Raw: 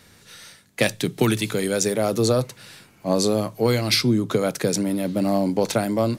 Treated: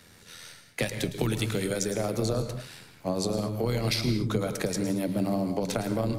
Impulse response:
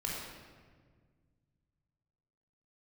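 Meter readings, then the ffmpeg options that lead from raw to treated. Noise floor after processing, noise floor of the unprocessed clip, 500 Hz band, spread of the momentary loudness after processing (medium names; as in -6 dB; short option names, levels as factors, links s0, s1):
-55 dBFS, -54 dBFS, -8.0 dB, 13 LU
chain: -filter_complex "[0:a]tremolo=f=84:d=0.571,acrossover=split=120[s0][s1];[s1]acompressor=threshold=0.0501:ratio=6[s2];[s0][s2]amix=inputs=2:normalize=0,asplit=2[s3][s4];[1:a]atrim=start_sample=2205,atrim=end_sample=6174,adelay=109[s5];[s4][s5]afir=irnorm=-1:irlink=0,volume=0.316[s6];[s3][s6]amix=inputs=2:normalize=0"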